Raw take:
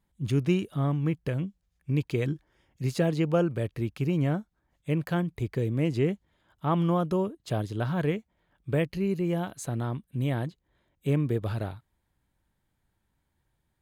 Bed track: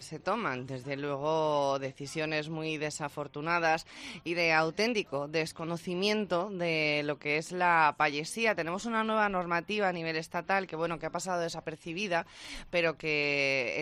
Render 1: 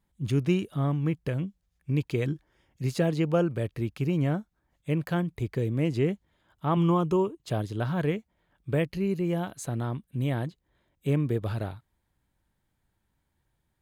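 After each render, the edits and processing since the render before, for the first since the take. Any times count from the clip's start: 6.76–7.43 s: rippled EQ curve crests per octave 0.71, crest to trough 9 dB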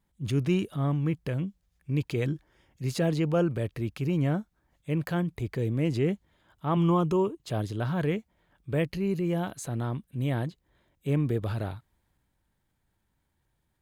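transient shaper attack -3 dB, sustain +3 dB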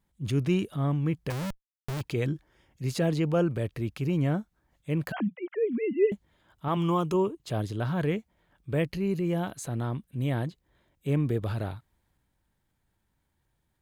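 1.30–2.01 s: Schmitt trigger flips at -45.5 dBFS; 5.12–6.12 s: formants replaced by sine waves; 6.68–7.14 s: tilt EQ +1.5 dB/octave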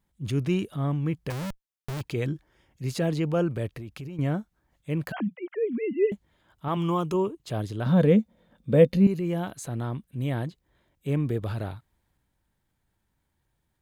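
3.70–4.19 s: compression 12:1, threshold -34 dBFS; 7.86–9.07 s: small resonant body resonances 220/500/3600 Hz, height 16 dB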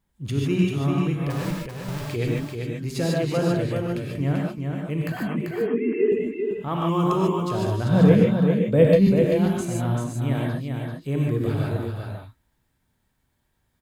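delay 390 ms -5 dB; gated-style reverb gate 170 ms rising, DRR -2 dB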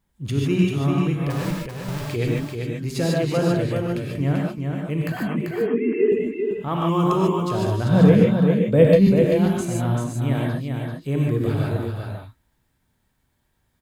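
trim +2 dB; peak limiter -3 dBFS, peak gain reduction 2 dB

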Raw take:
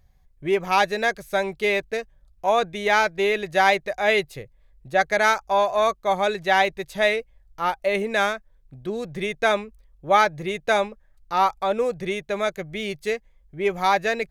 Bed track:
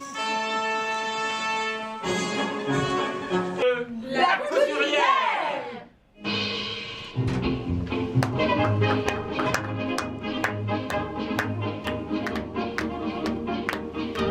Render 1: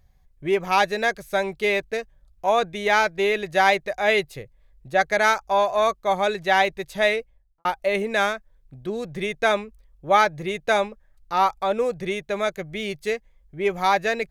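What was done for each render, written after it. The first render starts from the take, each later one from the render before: 7.14–7.65 s: studio fade out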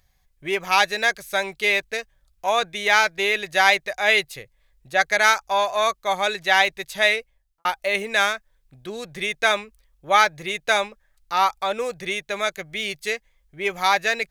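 tilt shelf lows -7 dB, about 930 Hz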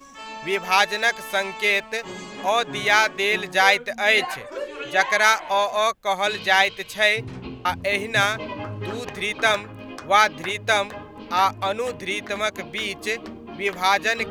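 add bed track -9.5 dB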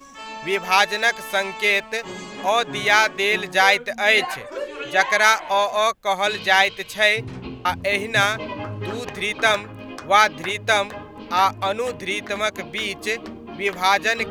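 trim +1.5 dB; peak limiter -2 dBFS, peak gain reduction 1.5 dB

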